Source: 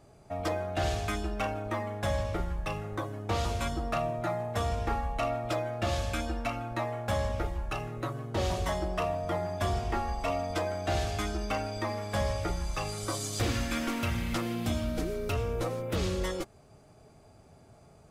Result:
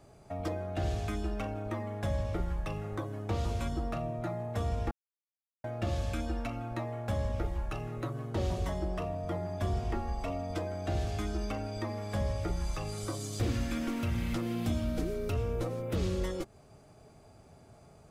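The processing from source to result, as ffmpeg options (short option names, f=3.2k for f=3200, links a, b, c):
-filter_complex "[0:a]asplit=3[a][b][c];[a]atrim=end=4.91,asetpts=PTS-STARTPTS,afade=t=out:st=4.906:d=0.004:c=hsin[d];[b]atrim=start=4.91:end=5.64,asetpts=PTS-STARTPTS,volume=0[e];[c]atrim=start=5.64,asetpts=PTS-STARTPTS,afade=t=in:d=0.004:c=hsin[f];[d][e][f]concat=n=3:v=0:a=1,acrossover=split=480[g][h];[h]acompressor=threshold=-42dB:ratio=4[i];[g][i]amix=inputs=2:normalize=0"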